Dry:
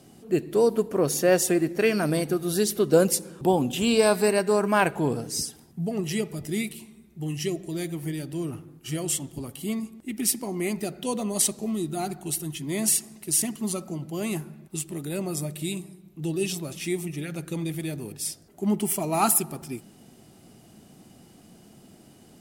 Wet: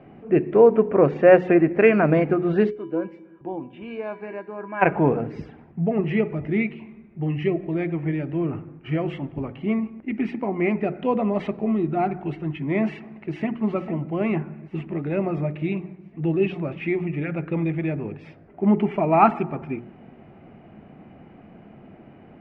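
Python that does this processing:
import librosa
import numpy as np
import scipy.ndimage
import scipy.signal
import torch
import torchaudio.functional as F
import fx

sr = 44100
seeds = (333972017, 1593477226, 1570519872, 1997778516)

y = fx.comb_fb(x, sr, f0_hz=330.0, decay_s=0.31, harmonics='odd', damping=0.0, mix_pct=90, at=(2.69, 4.81), fade=0.02)
y = fx.echo_throw(y, sr, start_s=12.9, length_s=0.65, ms=450, feedback_pct=65, wet_db=-11.5)
y = scipy.signal.sosfilt(scipy.signal.cheby1(4, 1.0, 2400.0, 'lowpass', fs=sr, output='sos'), y)
y = fx.peak_eq(y, sr, hz=630.0, db=2.0, octaves=0.77)
y = fx.hum_notches(y, sr, base_hz=60, count=7)
y = y * librosa.db_to_amplitude(7.0)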